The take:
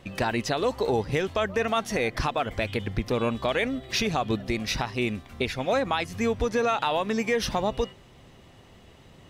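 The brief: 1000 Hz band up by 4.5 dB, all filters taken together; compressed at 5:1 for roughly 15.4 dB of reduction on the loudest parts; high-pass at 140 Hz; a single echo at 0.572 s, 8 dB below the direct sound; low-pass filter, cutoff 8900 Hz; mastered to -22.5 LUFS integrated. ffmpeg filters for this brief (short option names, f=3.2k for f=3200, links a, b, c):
-af "highpass=140,lowpass=8.9k,equalizer=f=1k:t=o:g=6,acompressor=threshold=-36dB:ratio=5,aecho=1:1:572:0.398,volume=16dB"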